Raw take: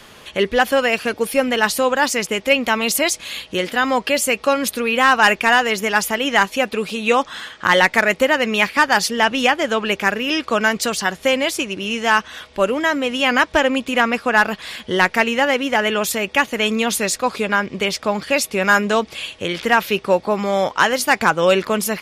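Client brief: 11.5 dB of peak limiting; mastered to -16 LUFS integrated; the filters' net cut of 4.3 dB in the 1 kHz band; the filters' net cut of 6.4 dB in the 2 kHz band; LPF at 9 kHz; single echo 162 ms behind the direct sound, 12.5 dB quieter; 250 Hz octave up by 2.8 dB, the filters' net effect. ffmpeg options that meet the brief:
-af "lowpass=9000,equalizer=f=250:t=o:g=3.5,equalizer=f=1000:t=o:g=-4,equalizer=f=2000:t=o:g=-7,alimiter=limit=0.168:level=0:latency=1,aecho=1:1:162:0.237,volume=2.99"

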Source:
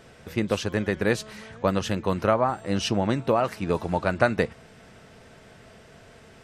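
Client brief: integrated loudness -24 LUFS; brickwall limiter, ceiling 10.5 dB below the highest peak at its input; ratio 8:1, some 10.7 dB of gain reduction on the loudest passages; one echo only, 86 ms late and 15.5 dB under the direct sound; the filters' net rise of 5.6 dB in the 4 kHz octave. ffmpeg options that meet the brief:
-af "equalizer=f=4000:t=o:g=7.5,acompressor=threshold=0.0447:ratio=8,alimiter=level_in=1.06:limit=0.0631:level=0:latency=1,volume=0.944,aecho=1:1:86:0.168,volume=4.22"

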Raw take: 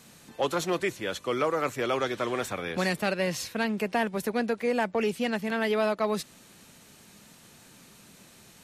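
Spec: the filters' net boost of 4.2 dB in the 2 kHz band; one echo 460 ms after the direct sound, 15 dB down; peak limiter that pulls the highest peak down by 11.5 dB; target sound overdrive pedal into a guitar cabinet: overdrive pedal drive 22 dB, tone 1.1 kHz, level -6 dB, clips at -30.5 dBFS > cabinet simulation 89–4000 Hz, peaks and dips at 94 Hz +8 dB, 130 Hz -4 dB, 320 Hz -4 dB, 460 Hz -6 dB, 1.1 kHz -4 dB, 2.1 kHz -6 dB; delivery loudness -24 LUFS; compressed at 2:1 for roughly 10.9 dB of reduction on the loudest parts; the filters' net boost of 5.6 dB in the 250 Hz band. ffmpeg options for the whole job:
-filter_complex "[0:a]equalizer=f=250:t=o:g=8,equalizer=f=2000:t=o:g=8.5,acompressor=threshold=0.0112:ratio=2,alimiter=level_in=2.51:limit=0.0631:level=0:latency=1,volume=0.398,aecho=1:1:460:0.178,asplit=2[s0][s1];[s1]highpass=f=720:p=1,volume=12.6,asoftclip=type=tanh:threshold=0.0299[s2];[s0][s2]amix=inputs=2:normalize=0,lowpass=f=1100:p=1,volume=0.501,highpass=89,equalizer=f=94:t=q:w=4:g=8,equalizer=f=130:t=q:w=4:g=-4,equalizer=f=320:t=q:w=4:g=-4,equalizer=f=460:t=q:w=4:g=-6,equalizer=f=1100:t=q:w=4:g=-4,equalizer=f=2100:t=q:w=4:g=-6,lowpass=f=4000:w=0.5412,lowpass=f=4000:w=1.3066,volume=8.91"

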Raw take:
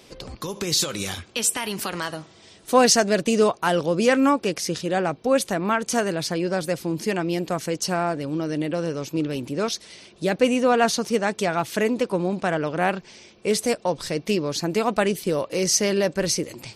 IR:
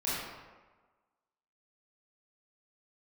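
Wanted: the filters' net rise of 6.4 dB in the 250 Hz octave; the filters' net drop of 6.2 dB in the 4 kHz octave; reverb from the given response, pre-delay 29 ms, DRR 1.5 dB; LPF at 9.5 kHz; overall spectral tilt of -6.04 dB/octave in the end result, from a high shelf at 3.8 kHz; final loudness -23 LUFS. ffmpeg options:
-filter_complex "[0:a]lowpass=9500,equalizer=f=250:t=o:g=8,highshelf=f=3800:g=-5,equalizer=f=4000:t=o:g=-4.5,asplit=2[s0][s1];[1:a]atrim=start_sample=2205,adelay=29[s2];[s1][s2]afir=irnorm=-1:irlink=0,volume=0.376[s3];[s0][s3]amix=inputs=2:normalize=0,volume=0.562"

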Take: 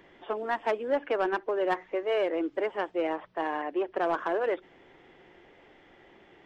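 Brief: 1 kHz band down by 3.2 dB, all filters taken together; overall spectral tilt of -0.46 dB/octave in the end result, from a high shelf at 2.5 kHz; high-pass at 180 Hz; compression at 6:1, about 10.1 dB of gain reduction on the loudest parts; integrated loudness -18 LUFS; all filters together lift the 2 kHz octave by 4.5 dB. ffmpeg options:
-af "highpass=180,equalizer=f=1000:t=o:g=-6.5,equalizer=f=2000:t=o:g=4.5,highshelf=f=2500:g=7.5,acompressor=threshold=0.0178:ratio=6,volume=11.2"

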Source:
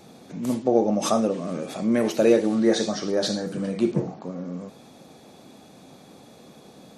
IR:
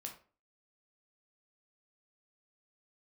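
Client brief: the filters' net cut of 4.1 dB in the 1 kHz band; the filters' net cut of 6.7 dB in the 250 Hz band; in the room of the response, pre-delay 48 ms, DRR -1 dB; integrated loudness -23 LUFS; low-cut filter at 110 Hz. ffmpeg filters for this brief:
-filter_complex "[0:a]highpass=110,equalizer=f=250:t=o:g=-8.5,equalizer=f=1000:t=o:g=-5.5,asplit=2[s0][s1];[1:a]atrim=start_sample=2205,adelay=48[s2];[s1][s2]afir=irnorm=-1:irlink=0,volume=1.68[s3];[s0][s3]amix=inputs=2:normalize=0,volume=1.19"

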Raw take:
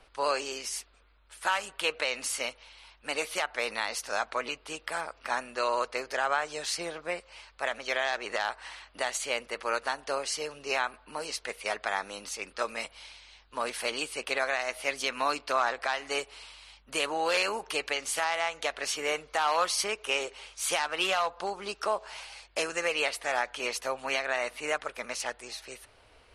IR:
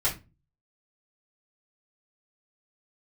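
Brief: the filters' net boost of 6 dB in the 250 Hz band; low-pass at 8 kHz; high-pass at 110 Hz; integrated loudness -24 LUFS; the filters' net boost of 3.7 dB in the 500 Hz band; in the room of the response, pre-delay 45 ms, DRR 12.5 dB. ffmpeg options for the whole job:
-filter_complex "[0:a]highpass=110,lowpass=8000,equalizer=f=250:t=o:g=7,equalizer=f=500:t=o:g=3,asplit=2[s0][s1];[1:a]atrim=start_sample=2205,adelay=45[s2];[s1][s2]afir=irnorm=-1:irlink=0,volume=0.0794[s3];[s0][s3]amix=inputs=2:normalize=0,volume=2"

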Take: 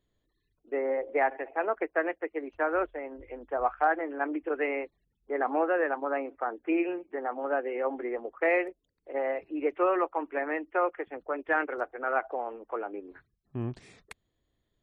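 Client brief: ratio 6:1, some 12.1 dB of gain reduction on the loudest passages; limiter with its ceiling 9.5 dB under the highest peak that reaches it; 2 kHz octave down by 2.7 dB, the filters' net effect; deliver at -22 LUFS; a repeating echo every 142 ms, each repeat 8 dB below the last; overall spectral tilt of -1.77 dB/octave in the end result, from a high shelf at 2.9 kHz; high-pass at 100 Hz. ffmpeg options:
-af "highpass=100,equalizer=f=2000:t=o:g=-4.5,highshelf=f=2900:g=3,acompressor=threshold=0.0178:ratio=6,alimiter=level_in=2.99:limit=0.0631:level=0:latency=1,volume=0.335,aecho=1:1:142|284|426|568|710:0.398|0.159|0.0637|0.0255|0.0102,volume=10.6"

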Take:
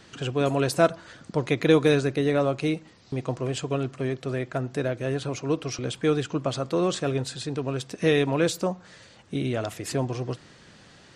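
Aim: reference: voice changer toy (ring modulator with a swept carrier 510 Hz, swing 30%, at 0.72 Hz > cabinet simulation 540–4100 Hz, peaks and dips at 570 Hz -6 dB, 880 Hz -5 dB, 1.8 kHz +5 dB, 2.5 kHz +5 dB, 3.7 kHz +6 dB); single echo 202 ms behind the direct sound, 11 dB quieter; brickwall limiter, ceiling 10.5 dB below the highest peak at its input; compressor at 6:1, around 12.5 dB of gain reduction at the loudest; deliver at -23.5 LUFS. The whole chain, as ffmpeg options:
-af "acompressor=threshold=0.0447:ratio=6,alimiter=level_in=1.19:limit=0.0631:level=0:latency=1,volume=0.841,aecho=1:1:202:0.282,aeval=exprs='val(0)*sin(2*PI*510*n/s+510*0.3/0.72*sin(2*PI*0.72*n/s))':c=same,highpass=540,equalizer=f=570:t=q:w=4:g=-6,equalizer=f=880:t=q:w=4:g=-5,equalizer=f=1800:t=q:w=4:g=5,equalizer=f=2500:t=q:w=4:g=5,equalizer=f=3700:t=q:w=4:g=6,lowpass=f=4100:w=0.5412,lowpass=f=4100:w=1.3066,volume=8.41"

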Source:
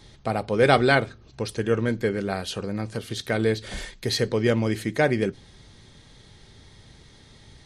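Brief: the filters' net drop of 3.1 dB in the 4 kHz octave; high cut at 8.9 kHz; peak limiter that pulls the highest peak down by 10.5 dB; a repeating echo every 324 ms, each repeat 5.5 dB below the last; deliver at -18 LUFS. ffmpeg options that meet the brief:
-af "lowpass=8900,equalizer=f=4000:t=o:g=-3.5,alimiter=limit=0.211:level=0:latency=1,aecho=1:1:324|648|972|1296|1620|1944|2268:0.531|0.281|0.149|0.079|0.0419|0.0222|0.0118,volume=2.66"

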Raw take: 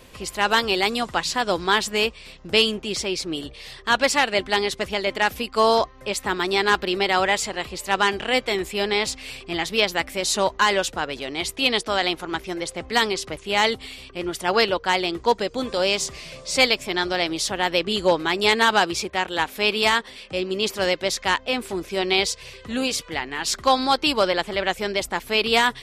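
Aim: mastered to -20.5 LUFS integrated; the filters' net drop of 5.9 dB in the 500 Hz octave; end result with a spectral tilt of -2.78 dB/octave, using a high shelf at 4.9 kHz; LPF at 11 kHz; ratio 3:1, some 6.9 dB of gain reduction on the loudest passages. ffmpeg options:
-af "lowpass=11000,equalizer=f=500:t=o:g=-7.5,highshelf=f=4900:g=-8,acompressor=threshold=0.0562:ratio=3,volume=2.82"

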